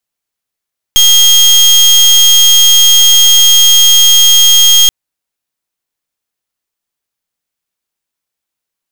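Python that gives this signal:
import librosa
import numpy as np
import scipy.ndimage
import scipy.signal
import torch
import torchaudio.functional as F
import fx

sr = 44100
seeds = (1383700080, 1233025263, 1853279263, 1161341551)

y = fx.pulse(sr, length_s=3.93, hz=3240.0, level_db=-5.0, duty_pct=29)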